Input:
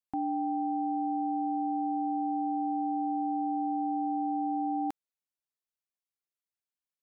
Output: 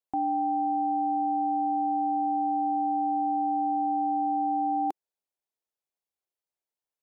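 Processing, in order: high-order bell 570 Hz +8 dB; trim -2 dB

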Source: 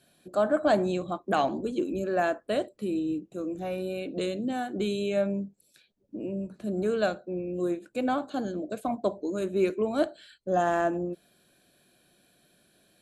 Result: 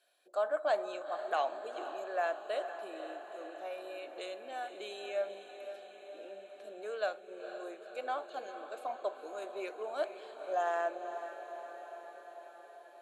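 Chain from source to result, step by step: high-pass 520 Hz 24 dB/octave; treble shelf 5.7 kHz -7 dB; echo that smears into a reverb 487 ms, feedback 68%, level -10 dB; trim -6 dB

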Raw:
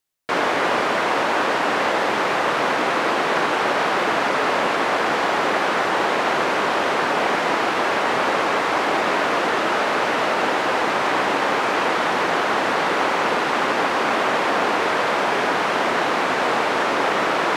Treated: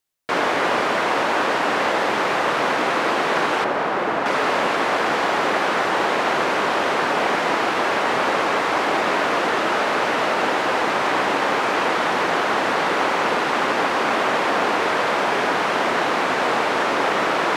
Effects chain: 3.64–4.26 s: treble shelf 2.4 kHz -11 dB

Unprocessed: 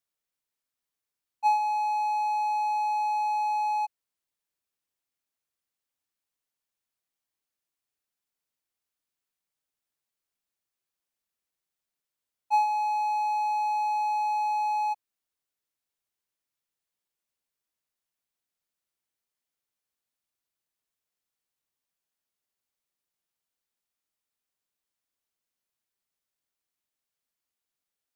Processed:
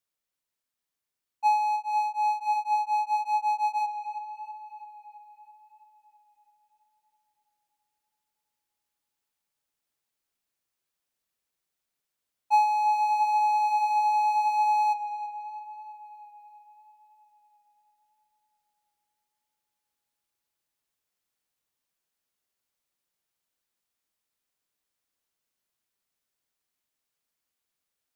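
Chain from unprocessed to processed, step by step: gain riding; tape echo 331 ms, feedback 64%, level -11.5 dB, low-pass 4.9 kHz; 1.75–3.84 s: tremolo of two beating tones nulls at 3 Hz -> 7.2 Hz; trim +2.5 dB

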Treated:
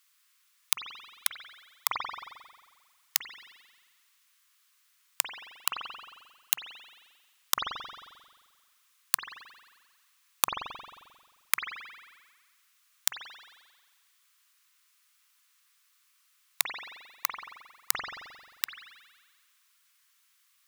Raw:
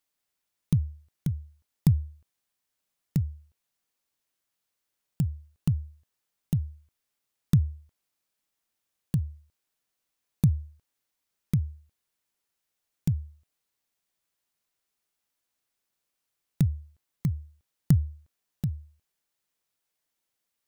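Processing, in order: compression 6:1, threshold -29 dBFS, peak gain reduction 13 dB; elliptic high-pass 1.1 kHz, stop band 60 dB; gate -52 dBFS, range -16 dB; spring tank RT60 1.5 s, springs 44 ms, chirp 45 ms, DRR 4.5 dB; loudness maximiser +32.5 dB; trim -1.5 dB

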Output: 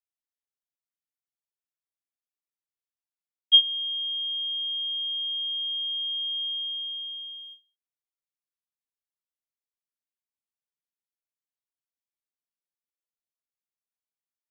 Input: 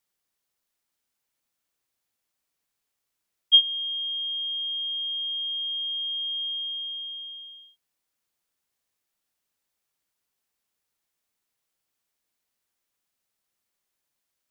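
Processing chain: gate with hold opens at -38 dBFS

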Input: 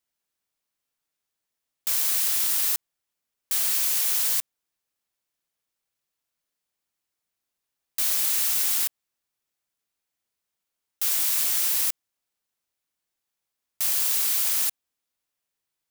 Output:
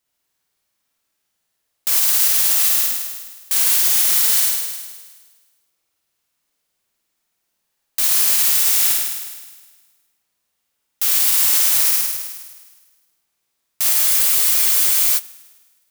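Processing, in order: flutter echo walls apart 8.9 m, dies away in 1.4 s; peak limiter -11.5 dBFS, peak gain reduction 4.5 dB; spectral freeze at 13.95 s, 1.23 s; trim +6.5 dB

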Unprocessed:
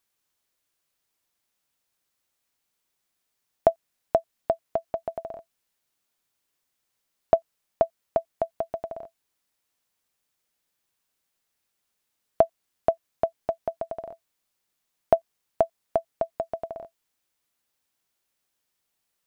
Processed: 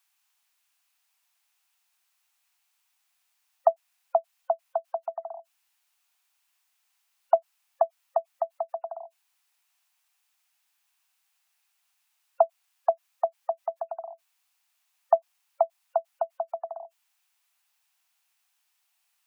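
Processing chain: steep high-pass 690 Hz 72 dB/octave; spectral gate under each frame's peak -25 dB strong; peaking EQ 2.6 kHz +4.5 dB 0.33 oct; trim +4.5 dB

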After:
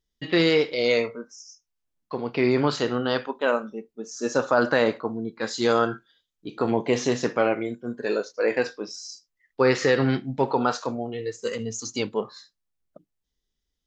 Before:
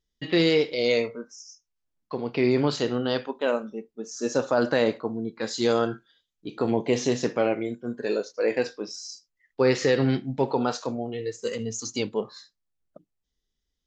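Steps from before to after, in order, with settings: dynamic bell 1.3 kHz, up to +7 dB, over -41 dBFS, Q 1.1

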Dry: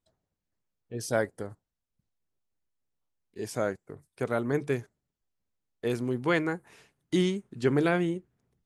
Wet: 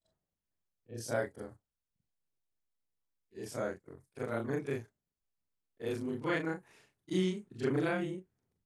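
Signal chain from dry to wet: short-time spectra conjugated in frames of 87 ms; trim -3.5 dB

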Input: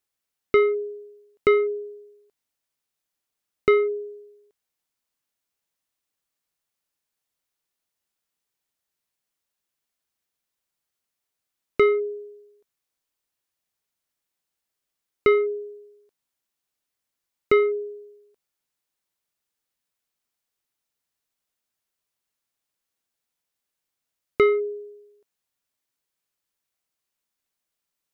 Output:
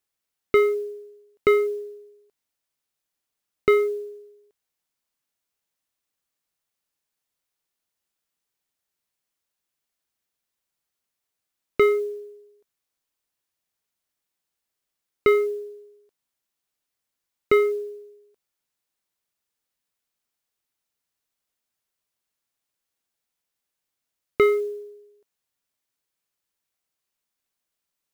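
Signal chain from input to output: modulation noise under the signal 33 dB

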